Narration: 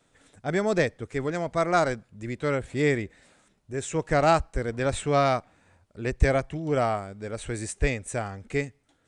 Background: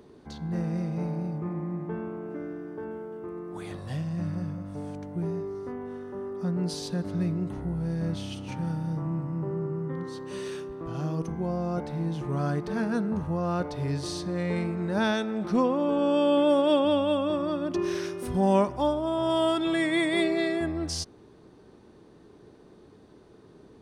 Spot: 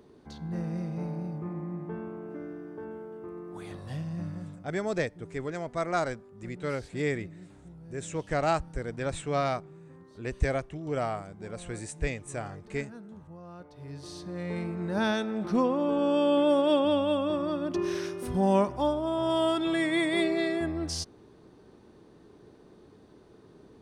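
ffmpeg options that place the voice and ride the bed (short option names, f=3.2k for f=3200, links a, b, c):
-filter_complex "[0:a]adelay=4200,volume=-6dB[a];[1:a]volume=13dB,afade=t=out:st=4.15:d=0.62:silence=0.188365,afade=t=in:st=13.7:d=1.4:silence=0.149624[b];[a][b]amix=inputs=2:normalize=0"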